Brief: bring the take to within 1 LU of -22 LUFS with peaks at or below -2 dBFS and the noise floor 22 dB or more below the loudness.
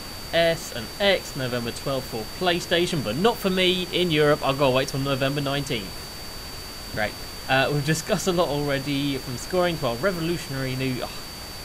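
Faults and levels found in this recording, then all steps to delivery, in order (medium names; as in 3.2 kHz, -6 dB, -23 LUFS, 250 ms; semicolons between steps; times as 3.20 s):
steady tone 4.6 kHz; tone level -39 dBFS; noise floor -37 dBFS; noise floor target -46 dBFS; loudness -24.0 LUFS; peak level -6.5 dBFS; loudness target -22.0 LUFS
-> band-stop 4.6 kHz, Q 30; noise print and reduce 9 dB; trim +2 dB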